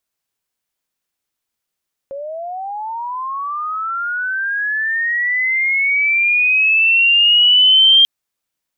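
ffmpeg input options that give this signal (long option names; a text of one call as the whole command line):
ffmpeg -f lavfi -i "aevalsrc='pow(10,(-24.5+18.5*t/5.94)/20)*sin(2*PI*(540*t+2660*t*t/(2*5.94)))':duration=5.94:sample_rate=44100" out.wav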